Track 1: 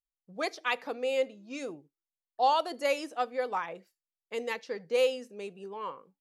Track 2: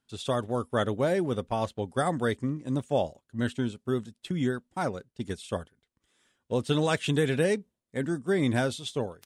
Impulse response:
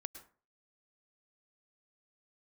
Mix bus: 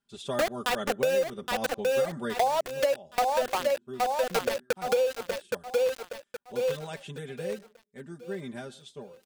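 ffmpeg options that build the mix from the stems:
-filter_complex "[0:a]equalizer=frequency=600:width=1.1:gain=13.5,aeval=exprs='val(0)*gte(abs(val(0)),0.0891)':channel_layout=same,volume=2.5dB,asplit=2[link_01][link_02];[link_02]volume=-6.5dB[link_03];[1:a]aecho=1:1:5:0.9,volume=-9dB,afade=type=out:start_time=2.18:duration=0.55:silence=0.375837,asplit=2[link_04][link_05];[link_05]volume=-7dB[link_06];[2:a]atrim=start_sample=2205[link_07];[link_06][link_07]afir=irnorm=-1:irlink=0[link_08];[link_03]aecho=0:1:819|1638|2457|3276|4095:1|0.36|0.13|0.0467|0.0168[link_09];[link_01][link_04][link_08][link_09]amix=inputs=4:normalize=0,acompressor=threshold=-22dB:ratio=16"

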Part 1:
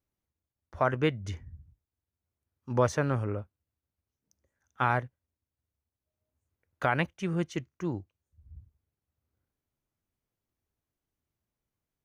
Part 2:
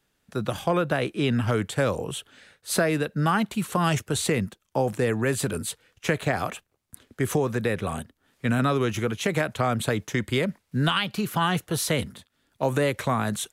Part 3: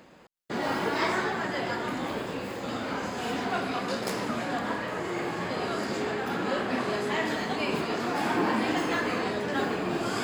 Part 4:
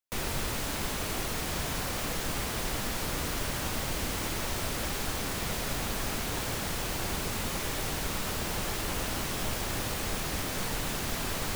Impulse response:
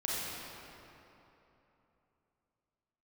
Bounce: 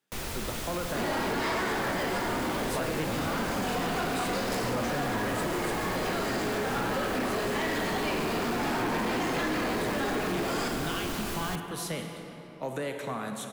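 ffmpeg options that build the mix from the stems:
-filter_complex "[0:a]adelay=1950,volume=-2.5dB[link_01];[1:a]highpass=frequency=150:width=0.5412,highpass=frequency=150:width=1.3066,volume=-12dB,asplit=2[link_02][link_03];[link_03]volume=-7dB[link_04];[2:a]adelay=450,volume=0.5dB,asplit=2[link_05][link_06];[link_06]volume=-5.5dB[link_07];[3:a]volume=-3dB,asplit=2[link_08][link_09];[link_09]volume=-22.5dB[link_10];[4:a]atrim=start_sample=2205[link_11];[link_04][link_07][link_10]amix=inputs=3:normalize=0[link_12];[link_12][link_11]afir=irnorm=-1:irlink=0[link_13];[link_01][link_02][link_05][link_08][link_13]amix=inputs=5:normalize=0,asoftclip=type=tanh:threshold=-20.5dB,acompressor=threshold=-27dB:ratio=6"

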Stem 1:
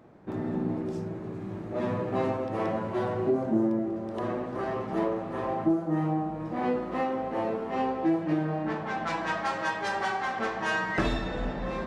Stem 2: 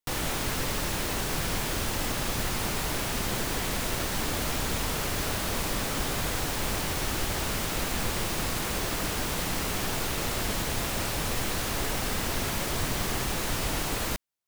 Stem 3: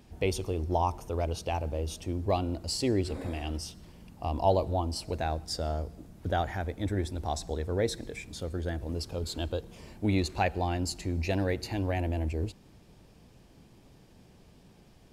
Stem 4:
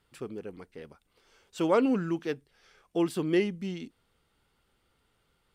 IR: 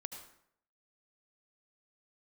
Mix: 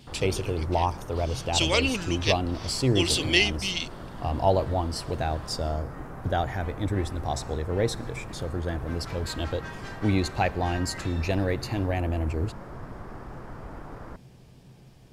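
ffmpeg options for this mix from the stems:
-filter_complex "[0:a]highpass=1300,volume=-8.5dB[link_01];[1:a]lowpass=frequency=1500:width=0.5412,lowpass=frequency=1500:width=1.3066,volume=-9dB[link_02];[2:a]equalizer=frequency=130:width=6.9:gain=13,volume=2.5dB[link_03];[3:a]lowpass=4900,highshelf=frequency=2100:gain=11,aexciter=amount=7.2:drive=5.4:freq=2100,volume=-4dB[link_04];[link_01][link_02][link_03][link_04]amix=inputs=4:normalize=0"

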